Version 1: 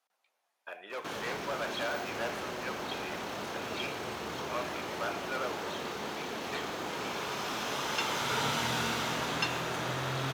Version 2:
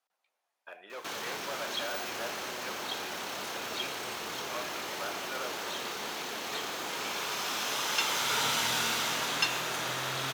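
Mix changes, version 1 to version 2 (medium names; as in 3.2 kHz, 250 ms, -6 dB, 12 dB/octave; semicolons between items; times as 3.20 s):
speech -3.5 dB; background: add tilt EQ +2.5 dB/octave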